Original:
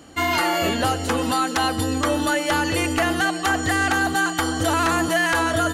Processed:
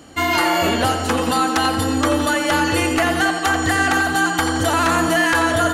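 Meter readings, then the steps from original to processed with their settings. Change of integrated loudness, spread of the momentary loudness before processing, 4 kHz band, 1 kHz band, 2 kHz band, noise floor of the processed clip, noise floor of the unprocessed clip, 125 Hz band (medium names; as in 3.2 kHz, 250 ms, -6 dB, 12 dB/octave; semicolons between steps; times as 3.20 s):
+3.5 dB, 3 LU, +3.0 dB, +3.5 dB, +3.5 dB, -23 dBFS, -28 dBFS, +2.5 dB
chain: tape echo 86 ms, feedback 76%, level -6.5 dB, low-pass 3.6 kHz; trim +2.5 dB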